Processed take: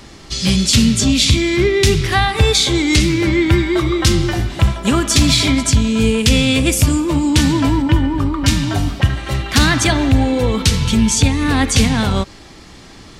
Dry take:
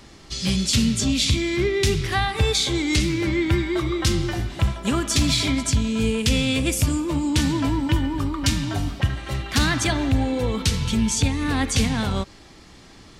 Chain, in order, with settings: 7.82–8.48 s: treble shelf 3.3 kHz -8.5 dB; trim +7.5 dB

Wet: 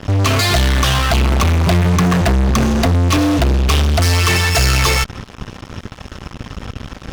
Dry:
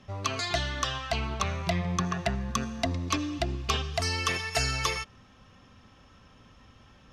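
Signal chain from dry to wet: bass shelf 220 Hz +9.5 dB; in parallel at -1 dB: fuzz box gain 41 dB, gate -48 dBFS

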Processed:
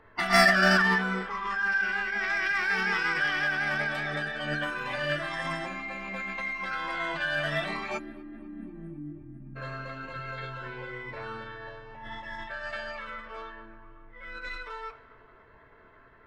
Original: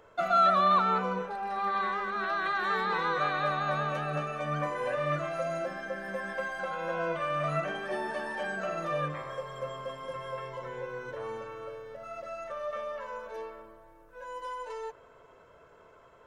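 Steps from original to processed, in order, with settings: on a send at -8 dB: reverberation RT60 0.45 s, pre-delay 3 ms; on the sum: spectral selection erased 7.98–9.56 s, 350–6400 Hz; tape echo 252 ms, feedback 65%, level -22 dB, low-pass 4.4 kHz; level-controlled noise filter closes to 1.4 kHz, open at -25 dBFS; peaking EQ 540 Hz -12.5 dB 0.42 oct; in parallel at -9.5 dB: hard clipper -25 dBFS, distortion -9 dB; on the sum: bass shelf 62 Hz +8.5 dB; formant shift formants +5 st

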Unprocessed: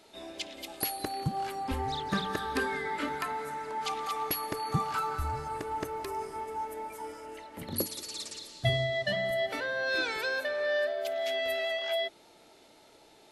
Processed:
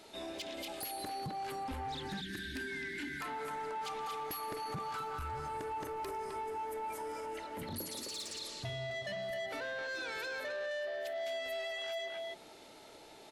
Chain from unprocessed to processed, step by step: spectral selection erased 1.95–3.21 s, 400–1400 Hz; compression 3:1, threshold -35 dBFS, peak gain reduction 10 dB; speakerphone echo 260 ms, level -6 dB; saturation -33 dBFS, distortion -15 dB; peak limiter -37.5 dBFS, peak gain reduction 4.5 dB; trim +2.5 dB

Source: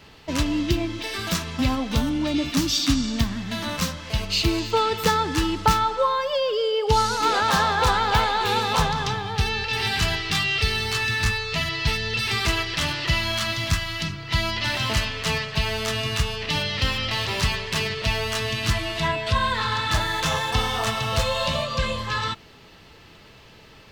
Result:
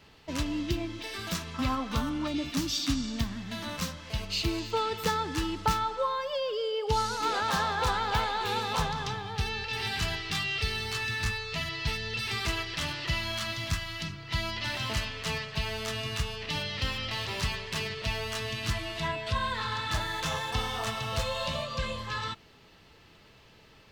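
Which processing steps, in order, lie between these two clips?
1.54–2.28 s: peaking EQ 1.2 kHz +11 dB 0.61 oct; trim -8 dB

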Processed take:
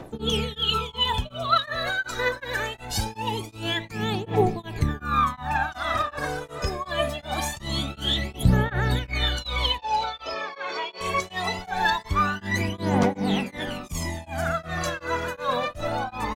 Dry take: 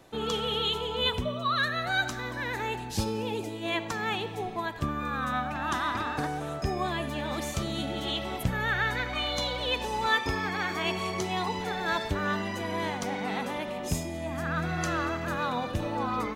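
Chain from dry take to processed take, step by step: peak limiter -22 dBFS, peak gain reduction 9 dB; phaser 0.23 Hz, delay 2.1 ms, feedback 79%; 9.78–11.01 s: cabinet simulation 410–5100 Hz, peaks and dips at 570 Hz +5 dB, 960 Hz -3 dB, 1.8 kHz -9 dB, 3.2 kHz -4 dB; delay 564 ms -17 dB; tremolo of two beating tones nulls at 2.7 Hz; trim +4.5 dB

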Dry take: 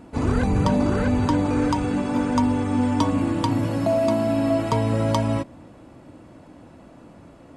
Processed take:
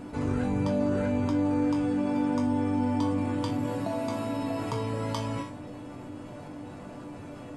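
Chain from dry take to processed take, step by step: chord resonator G2 major, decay 0.29 s; level flattener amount 50%

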